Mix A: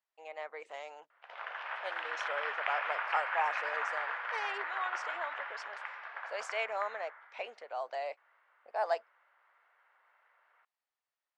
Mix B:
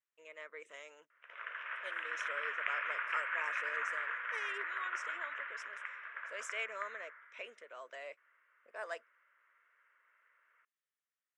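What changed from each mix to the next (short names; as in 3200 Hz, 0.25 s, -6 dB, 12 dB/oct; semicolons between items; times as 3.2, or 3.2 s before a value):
speech: add resonant high shelf 3300 Hz +6.5 dB, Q 1.5; master: add fixed phaser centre 1900 Hz, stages 4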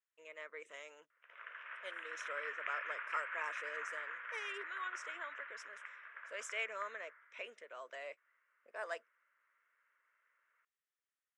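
background -6.5 dB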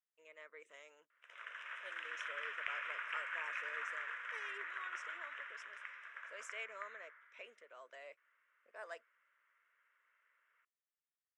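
speech -6.5 dB; background: remove LPF 2400 Hz 12 dB/oct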